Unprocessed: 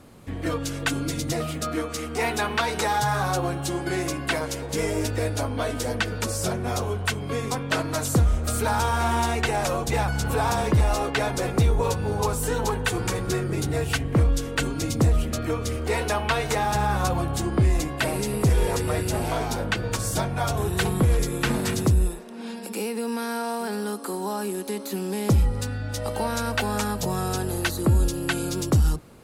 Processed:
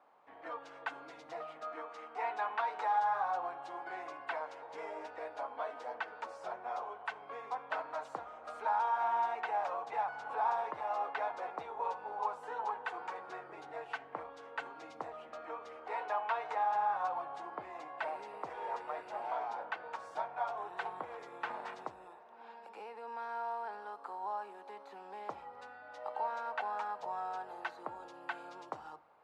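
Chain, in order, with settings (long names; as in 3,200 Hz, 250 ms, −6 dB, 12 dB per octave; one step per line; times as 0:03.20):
four-pole ladder band-pass 970 Hz, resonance 50%
rectangular room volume 2,800 cubic metres, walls furnished, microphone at 0.44 metres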